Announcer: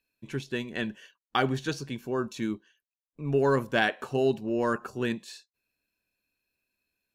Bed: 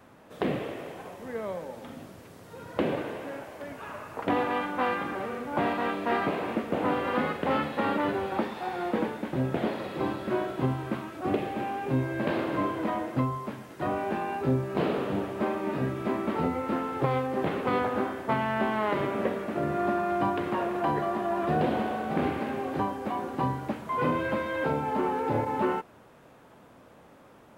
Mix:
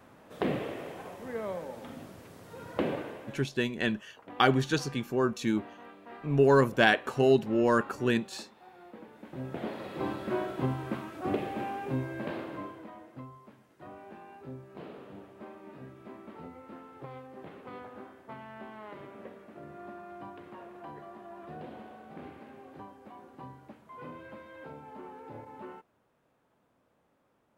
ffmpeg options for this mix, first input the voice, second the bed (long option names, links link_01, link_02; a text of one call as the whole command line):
ffmpeg -i stem1.wav -i stem2.wav -filter_complex "[0:a]adelay=3050,volume=2.5dB[link_01];[1:a]volume=16dB,afade=type=out:start_time=2.7:duration=0.89:silence=0.112202,afade=type=in:start_time=9.06:duration=1.1:silence=0.133352,afade=type=out:start_time=11.62:duration=1.27:silence=0.177828[link_02];[link_01][link_02]amix=inputs=2:normalize=0" out.wav